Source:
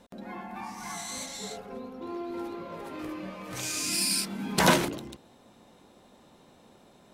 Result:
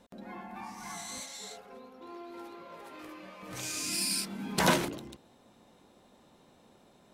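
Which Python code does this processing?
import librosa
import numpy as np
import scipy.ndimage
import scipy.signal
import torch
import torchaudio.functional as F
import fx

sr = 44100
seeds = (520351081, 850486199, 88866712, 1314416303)

y = fx.low_shelf(x, sr, hz=380.0, db=-12.0, at=(1.2, 3.43))
y = F.gain(torch.from_numpy(y), -4.0).numpy()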